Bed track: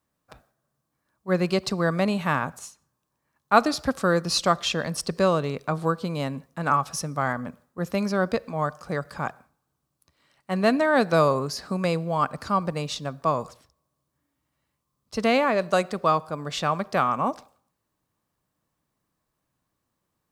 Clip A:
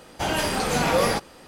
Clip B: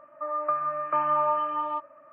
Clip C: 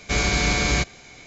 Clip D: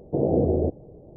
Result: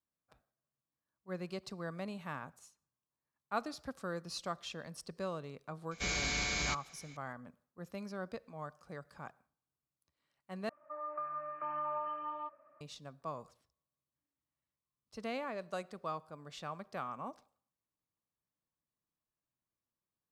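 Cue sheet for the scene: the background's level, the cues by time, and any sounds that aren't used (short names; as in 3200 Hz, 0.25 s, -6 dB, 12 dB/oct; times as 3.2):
bed track -18.5 dB
5.91 add C -14.5 dB + tilt shelf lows -4 dB
10.69 replace with B -12 dB + limiter -18.5 dBFS
not used: A, D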